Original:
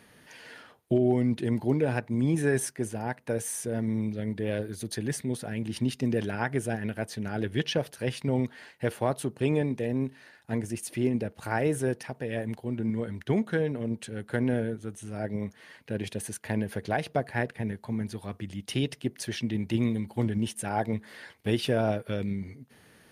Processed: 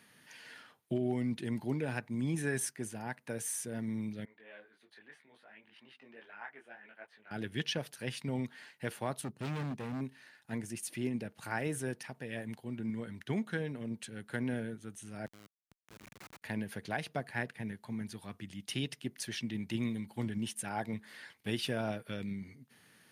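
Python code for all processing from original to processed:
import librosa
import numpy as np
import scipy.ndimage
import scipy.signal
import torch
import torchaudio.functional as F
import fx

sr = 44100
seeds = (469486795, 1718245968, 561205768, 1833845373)

y = fx.chain(x, sr, fx.highpass(hz=770.0, slope=12),
    fx.air_absorb(metres=500.0),
    fx.detune_double(cents=24), at=(4.25, 7.31))
y = fx.chain(y, sr, fx.low_shelf(hz=350.0, db=9.0),
    fx.overload_stage(gain_db=26.5),
    fx.upward_expand(threshold_db=-44.0, expansion=1.5), at=(9.21, 10.01))
y = fx.chain(y, sr, fx.highpass(hz=980.0, slope=6),
    fx.resample_bad(factor=8, down='none', up='filtered'),
    fx.schmitt(flips_db=-38.0), at=(15.26, 16.42))
y = scipy.signal.sosfilt(scipy.signal.butter(2, 150.0, 'highpass', fs=sr, output='sos'), y)
y = fx.peak_eq(y, sr, hz=480.0, db=-8.5, octaves=1.9)
y = y * librosa.db_to_amplitude(-3.0)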